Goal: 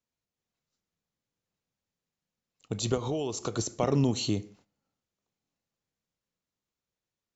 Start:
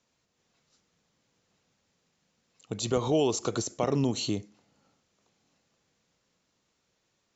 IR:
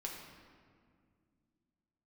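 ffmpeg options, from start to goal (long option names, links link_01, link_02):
-filter_complex "[0:a]agate=range=-17dB:threshold=-59dB:ratio=16:detection=peak,lowshelf=frequency=92:gain=9,asettb=1/sr,asplit=3[link_01][link_02][link_03];[link_01]atrim=end=2.944[link_04];[link_02]atrim=start=2.94:end=3.59,asetpts=PTS-STARTPTS,afade=type=in:duration=0.004:curve=qsin,afade=type=out:start_time=0.646:duration=0.004:curve=qsin,acompressor=threshold=-28dB:ratio=6[link_05];[link_03]atrim=start=3.586[link_06];[link_04][link_05]acrossfade=duration=0.004:curve1=hsin:curve2=qsin[link_07];[link_07][link_06]acrossfade=duration=0.004:curve1=qsin:curve2=hsin,asplit=2[link_08][link_09];[1:a]atrim=start_sample=2205,afade=type=out:start_time=0.2:duration=0.01,atrim=end_sample=9261,adelay=28[link_10];[link_09][link_10]afir=irnorm=-1:irlink=0,volume=-17dB[link_11];[link_08][link_11]amix=inputs=2:normalize=0"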